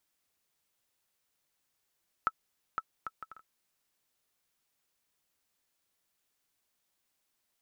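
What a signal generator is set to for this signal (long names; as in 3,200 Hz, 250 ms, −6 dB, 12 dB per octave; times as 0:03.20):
bouncing ball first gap 0.51 s, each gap 0.56, 1,310 Hz, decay 45 ms −16 dBFS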